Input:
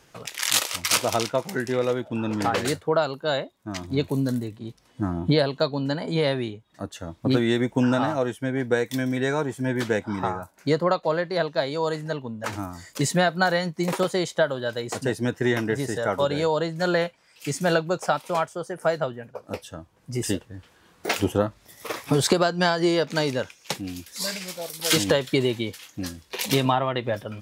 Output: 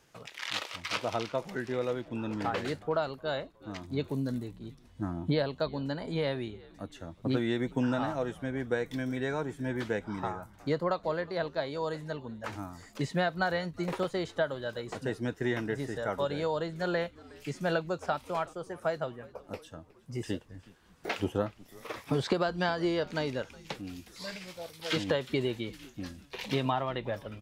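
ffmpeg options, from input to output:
-filter_complex "[0:a]acrossover=split=4400[s0][s1];[s1]acompressor=threshold=0.00398:ratio=4:attack=1:release=60[s2];[s0][s2]amix=inputs=2:normalize=0,asplit=5[s3][s4][s5][s6][s7];[s4]adelay=365,afreqshift=-91,volume=0.0794[s8];[s5]adelay=730,afreqshift=-182,volume=0.0437[s9];[s6]adelay=1095,afreqshift=-273,volume=0.024[s10];[s7]adelay=1460,afreqshift=-364,volume=0.0132[s11];[s3][s8][s9][s10][s11]amix=inputs=5:normalize=0,volume=0.398"

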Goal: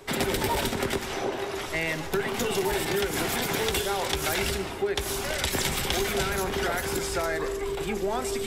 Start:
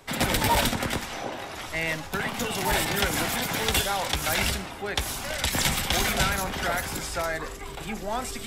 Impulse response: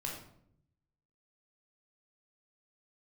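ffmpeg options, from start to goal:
-filter_complex "[0:a]equalizer=f=390:t=o:w=0.28:g=14,acompressor=threshold=0.0562:ratio=6,asplit=2[s0][s1];[1:a]atrim=start_sample=2205,adelay=145[s2];[s1][s2]afir=irnorm=-1:irlink=0,volume=0.15[s3];[s0][s3]amix=inputs=2:normalize=0,volume=1.19"

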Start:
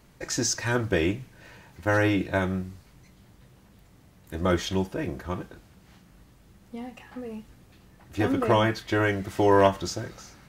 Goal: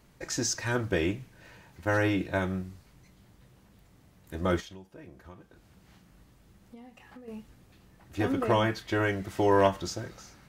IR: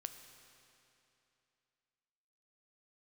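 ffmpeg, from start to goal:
-filter_complex "[0:a]asettb=1/sr,asplit=3[s0][s1][s2];[s0]atrim=end=4.604[s3];[s1]atrim=start=4.6:end=7.28,asetpts=PTS-STARTPTS,afade=t=in:d=0.004:c=qsin,afade=t=out:st=2.676:d=0.004:c=qsin,acompressor=threshold=0.00631:ratio=4[s4];[s2]atrim=start=7.276[s5];[s3][s4]acrossfade=d=0.004:c1=hsin:c2=qsin[s6];[s6][s5]acrossfade=d=0.004:c1=qsin:c2=hsin,volume=0.668"

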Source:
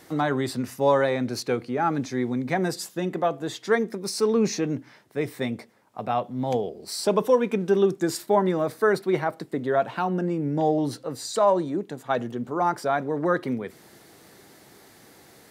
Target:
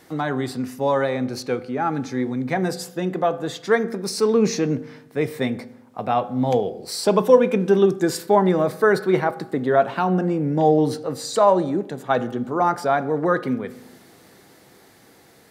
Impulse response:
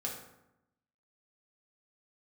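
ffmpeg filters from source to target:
-filter_complex "[0:a]dynaudnorm=f=700:g=9:m=1.78,asplit=2[s0][s1];[1:a]atrim=start_sample=2205,lowpass=5400[s2];[s1][s2]afir=irnorm=-1:irlink=0,volume=0.282[s3];[s0][s3]amix=inputs=2:normalize=0,volume=0.841"

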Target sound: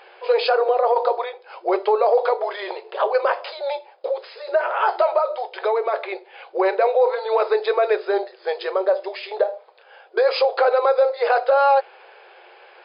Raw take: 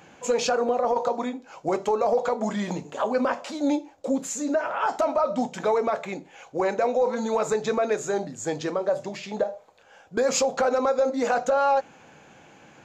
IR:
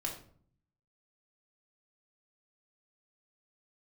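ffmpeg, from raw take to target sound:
-filter_complex "[0:a]asettb=1/sr,asplit=3[s0][s1][s2];[s0]atrim=end=5.184[s3];[s1]atrim=start=5.18:end=5.94,asetpts=PTS-STARTPTS,afade=t=in:d=0.004:c=qsin,afade=t=out:st=0.756:d=0.004:c=qsin,acompressor=threshold=0.0355:ratio=1.5[s4];[s2]atrim=start=5.936[s5];[s3][s4]acrossfade=d=0.004:c1=hsin:c2=qsin[s6];[s6][s5]acrossfade=d=0.004:c1=qsin:c2=hsin,afftfilt=real='re*between(b*sr/4096,350,5100)':imag='im*between(b*sr/4096,350,5100)':win_size=4096:overlap=0.75,volume=1.88"

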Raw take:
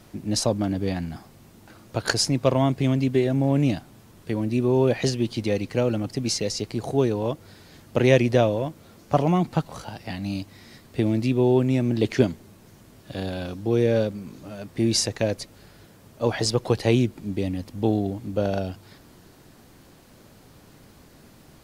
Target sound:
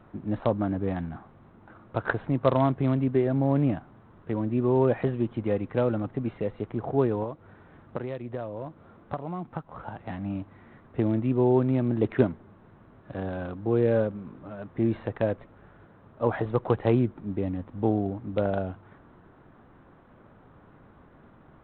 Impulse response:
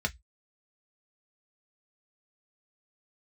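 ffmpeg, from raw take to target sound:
-filter_complex "[0:a]asettb=1/sr,asplit=3[s0][s1][s2];[s0]atrim=end=7.234[s3];[s1]atrim=start=7.23:end=9.79,asetpts=PTS-STARTPTS,afade=t=in:d=0.004:c=qsin,afade=t=out:st=2.556:d=0.004:c=qsin,acompressor=threshold=0.0398:ratio=10[s4];[s2]atrim=start=9.786[s5];[s3][s4]acrossfade=d=0.004:c1=hsin:c2=qsin[s6];[s6][s5]acrossfade=d=0.004:c1=qsin:c2=hsin,lowpass=f=1300:t=q:w=1.7,volume=0.708" -ar 8000 -c:a adpcm_g726 -b:a 32k

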